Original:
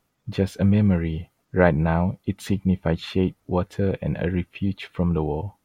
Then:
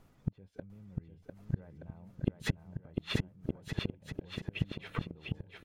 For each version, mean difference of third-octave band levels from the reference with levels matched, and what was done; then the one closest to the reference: 11.0 dB: tilt EQ -2 dB/octave; peak limiter -11.5 dBFS, peak gain reduction 8 dB; inverted gate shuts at -23 dBFS, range -40 dB; bouncing-ball echo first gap 700 ms, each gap 0.75×, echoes 5; trim +5 dB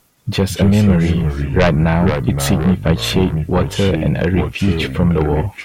7.5 dB: treble shelf 4.1 kHz +9 dB; in parallel at -2 dB: compression, threshold -26 dBFS, peak gain reduction 14.5 dB; on the sum: sine folder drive 9 dB, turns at -0.5 dBFS; ever faster or slower copies 168 ms, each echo -3 st, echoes 3, each echo -6 dB; trim -6.5 dB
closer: second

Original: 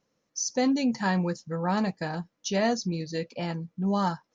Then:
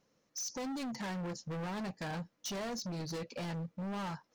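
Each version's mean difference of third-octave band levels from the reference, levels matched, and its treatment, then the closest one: 8.5 dB: compression 6:1, threshold -30 dBFS, peak gain reduction 9.5 dB; hard clipper -38 dBFS, distortion -7 dB; trim +1 dB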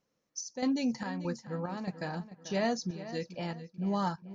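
4.0 dB: square tremolo 1.6 Hz, depth 60%, duty 65%; on a send: filtered feedback delay 439 ms, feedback 39%, low-pass 3.9 kHz, level -13.5 dB; on the sum: trim -5 dB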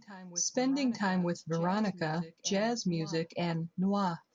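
3.0 dB: compression, threshold -27 dBFS, peak gain reduction 7 dB; on a send: reverse echo 926 ms -17.5 dB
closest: third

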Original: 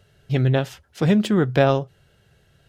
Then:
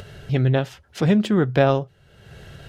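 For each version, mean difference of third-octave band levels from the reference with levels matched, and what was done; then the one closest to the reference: 1.0 dB: treble shelf 6.2 kHz -7 dB; upward compressor, threshold -26 dBFS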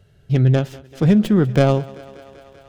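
4.0 dB: tracing distortion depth 0.12 ms; bass shelf 430 Hz +8.5 dB; thinning echo 194 ms, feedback 80%, high-pass 230 Hz, level -19.5 dB; trim -3 dB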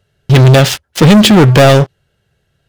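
7.5 dB: dynamic bell 4.1 kHz, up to +6 dB, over -42 dBFS, Q 0.75; waveshaping leveller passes 5; in parallel at +0.5 dB: peak limiter -14 dBFS, peak gain reduction 9.5 dB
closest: first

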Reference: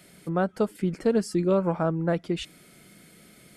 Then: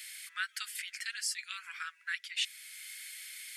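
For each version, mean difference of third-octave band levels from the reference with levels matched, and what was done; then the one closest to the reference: 21.0 dB: steep high-pass 1.7 kHz 48 dB/octave; gain riding within 3 dB 0.5 s; trim +7.5 dB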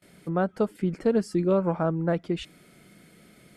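1.5 dB: treble shelf 3.7 kHz -7 dB; gate with hold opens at -46 dBFS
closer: second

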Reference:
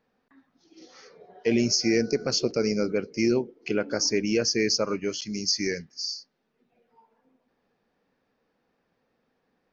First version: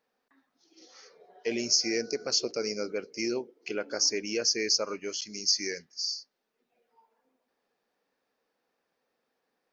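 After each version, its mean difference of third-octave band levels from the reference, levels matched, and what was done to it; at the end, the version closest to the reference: 3.0 dB: tone controls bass -14 dB, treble +6 dB; trim -4.5 dB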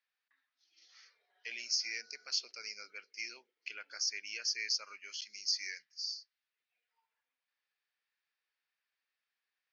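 10.5 dB: Butterworth band-pass 3.3 kHz, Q 0.79; trim -6.5 dB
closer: first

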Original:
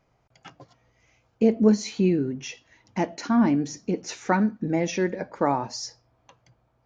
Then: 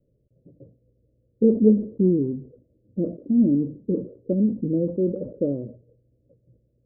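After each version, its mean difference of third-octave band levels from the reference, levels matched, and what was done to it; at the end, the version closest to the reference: 9.0 dB: steep low-pass 570 Hz 96 dB/octave; decay stretcher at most 140 dB/s; trim +2 dB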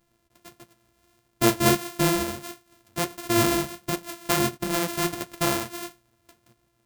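15.5 dB: sorted samples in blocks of 128 samples; treble shelf 5.9 kHz +9.5 dB; flange 1.5 Hz, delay 5 ms, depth 8.6 ms, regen -35%; trim +1.5 dB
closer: first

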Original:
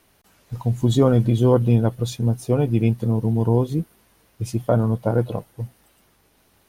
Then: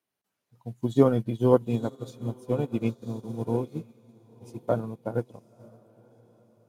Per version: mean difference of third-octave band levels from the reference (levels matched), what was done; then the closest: 5.0 dB: high-pass 140 Hz 12 dB/octave; echo that smears into a reverb 974 ms, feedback 50%, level -9 dB; upward expansion 2.5:1, over -30 dBFS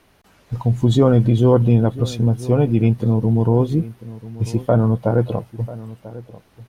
2.5 dB: treble shelf 6.3 kHz -11.5 dB; in parallel at -1.5 dB: peak limiter -15.5 dBFS, peak gain reduction 10 dB; on the sum: echo from a far wall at 170 m, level -17 dB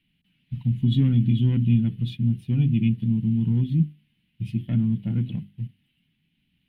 9.0 dB: hum notches 50/100/150/200/250/300/350/400/450 Hz; waveshaping leveller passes 1; FFT filter 110 Hz 0 dB, 150 Hz +11 dB, 260 Hz +3 dB, 490 Hz -26 dB, 790 Hz -21 dB, 1.2 kHz -22 dB, 2.1 kHz -1 dB, 3 kHz +7 dB, 6.5 kHz -28 dB, 9.5 kHz -18 dB; trim -7.5 dB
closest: second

